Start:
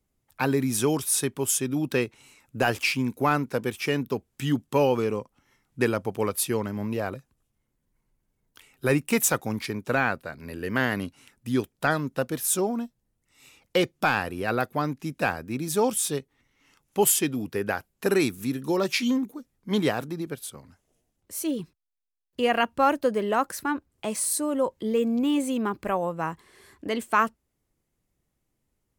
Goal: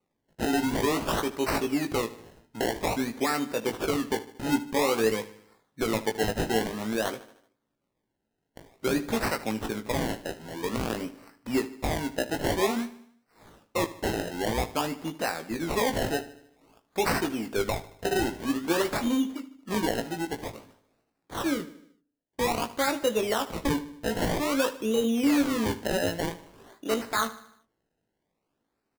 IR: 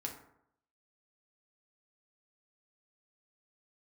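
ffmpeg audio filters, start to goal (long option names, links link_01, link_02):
-filter_complex "[0:a]highpass=240,alimiter=limit=-17.5dB:level=0:latency=1:release=106,acrusher=samples=26:mix=1:aa=0.000001:lfo=1:lforange=26:lforate=0.51,asplit=2[link_01][link_02];[link_02]adelay=18,volume=-6dB[link_03];[link_01][link_03]amix=inputs=2:normalize=0,aecho=1:1:76|152|228|304|380:0.15|0.0763|0.0389|0.0198|0.0101,asplit=2[link_04][link_05];[1:a]atrim=start_sample=2205[link_06];[link_05][link_06]afir=irnorm=-1:irlink=0,volume=-19.5dB[link_07];[link_04][link_07]amix=inputs=2:normalize=0"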